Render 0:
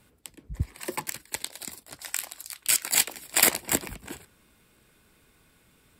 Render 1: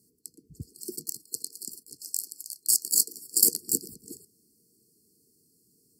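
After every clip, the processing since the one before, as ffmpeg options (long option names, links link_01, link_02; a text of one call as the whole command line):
ffmpeg -i in.wav -af "highpass=160,highshelf=frequency=4400:gain=5,afftfilt=real='re*(1-between(b*sr/4096,480,4200))':imag='im*(1-between(b*sr/4096,480,4200))':win_size=4096:overlap=0.75,volume=-3.5dB" out.wav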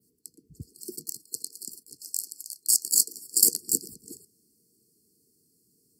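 ffmpeg -i in.wav -af "adynamicequalizer=threshold=0.0178:dfrequency=6800:dqfactor=0.75:tfrequency=6800:tqfactor=0.75:attack=5:release=100:ratio=0.375:range=2:mode=boostabove:tftype=bell,volume=-1.5dB" out.wav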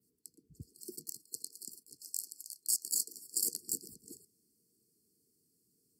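ffmpeg -i in.wav -af "alimiter=limit=-10dB:level=0:latency=1:release=117,volume=-7.5dB" out.wav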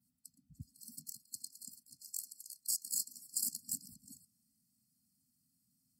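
ffmpeg -i in.wav -af "afftfilt=real='re*eq(mod(floor(b*sr/1024/300),2),0)':imag='im*eq(mod(floor(b*sr/1024/300),2),0)':win_size=1024:overlap=0.75" out.wav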